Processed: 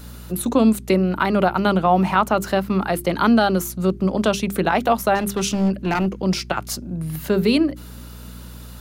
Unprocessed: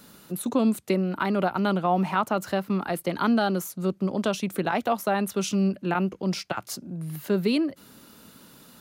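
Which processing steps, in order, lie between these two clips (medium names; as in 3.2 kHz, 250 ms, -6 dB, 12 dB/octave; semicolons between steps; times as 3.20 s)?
hum 60 Hz, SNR 18 dB; 5.15–6.06 s: hard clipper -22 dBFS, distortion -20 dB; hum notches 50/100/150/200/250/300/350/400 Hz; trim +7 dB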